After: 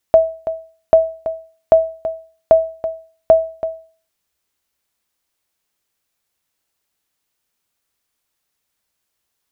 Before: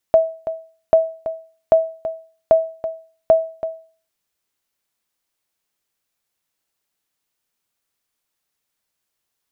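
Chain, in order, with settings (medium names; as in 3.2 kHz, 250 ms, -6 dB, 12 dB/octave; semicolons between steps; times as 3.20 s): peaking EQ 63 Hz +12 dB 0.22 oct; trim +3 dB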